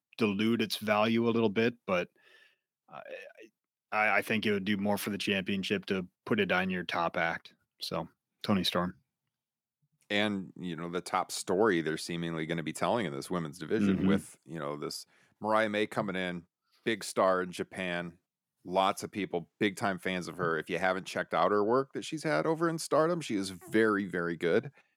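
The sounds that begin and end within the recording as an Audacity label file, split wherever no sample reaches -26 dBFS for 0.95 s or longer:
3.930000	8.850000	sound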